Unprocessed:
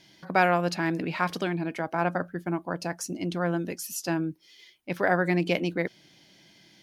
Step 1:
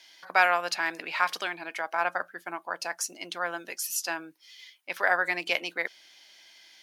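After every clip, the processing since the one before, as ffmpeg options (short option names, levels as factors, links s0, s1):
-af "highpass=940,volume=1.58"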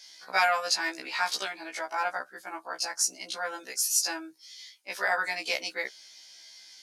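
-af "aexciter=amount=3.7:drive=6:freq=4200,lowpass=7700,afftfilt=real='re*1.73*eq(mod(b,3),0)':imag='im*1.73*eq(mod(b,3),0)':win_size=2048:overlap=0.75"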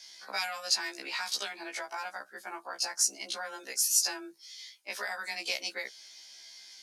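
-filter_complex "[0:a]acrossover=split=150|3000[s0][s1][s2];[s1]acompressor=threshold=0.0158:ratio=6[s3];[s0][s3][s2]amix=inputs=3:normalize=0,afreqshift=18"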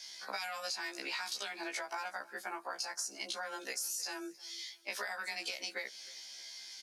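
-af "alimiter=limit=0.0708:level=0:latency=1:release=62,acompressor=threshold=0.0126:ratio=6,aecho=1:1:313|626:0.075|0.0247,volume=1.26"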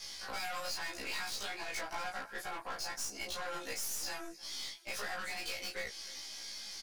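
-filter_complex "[0:a]aeval=exprs='(tanh(126*val(0)+0.55)-tanh(0.55))/126':c=same,flanger=delay=1.5:depth=7.1:regen=-57:speed=1.2:shape=sinusoidal,asplit=2[s0][s1];[s1]adelay=19,volume=0.794[s2];[s0][s2]amix=inputs=2:normalize=0,volume=2.51"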